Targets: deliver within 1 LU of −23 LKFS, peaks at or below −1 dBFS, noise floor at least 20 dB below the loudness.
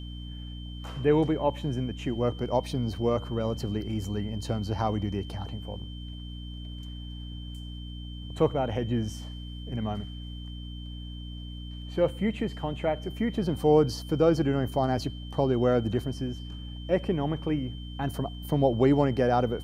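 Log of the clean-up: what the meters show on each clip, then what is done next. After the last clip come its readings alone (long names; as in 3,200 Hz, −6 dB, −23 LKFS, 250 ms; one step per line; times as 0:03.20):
mains hum 60 Hz; hum harmonics up to 300 Hz; level of the hum −36 dBFS; interfering tone 3,100 Hz; level of the tone −47 dBFS; integrated loudness −28.0 LKFS; sample peak −9.5 dBFS; target loudness −23.0 LKFS
→ hum removal 60 Hz, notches 5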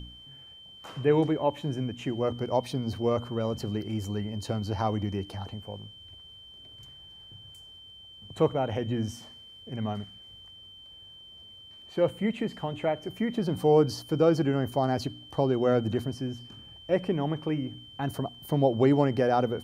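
mains hum none found; interfering tone 3,100 Hz; level of the tone −47 dBFS
→ notch filter 3,100 Hz, Q 30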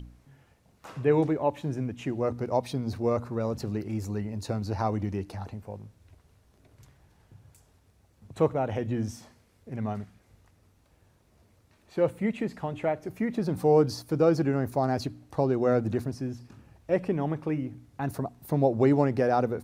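interfering tone none found; integrated loudness −28.5 LKFS; sample peak −10.0 dBFS; target loudness −23.0 LKFS
→ level +5.5 dB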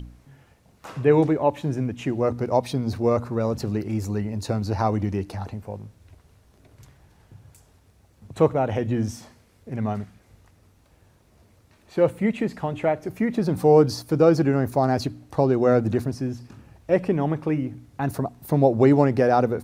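integrated loudness −23.0 LKFS; sample peak −4.5 dBFS; background noise floor −59 dBFS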